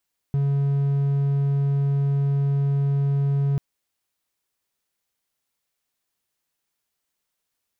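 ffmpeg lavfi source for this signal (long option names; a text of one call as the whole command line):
ffmpeg -f lavfi -i "aevalsrc='0.15*(1-4*abs(mod(140*t+0.25,1)-0.5))':duration=3.24:sample_rate=44100" out.wav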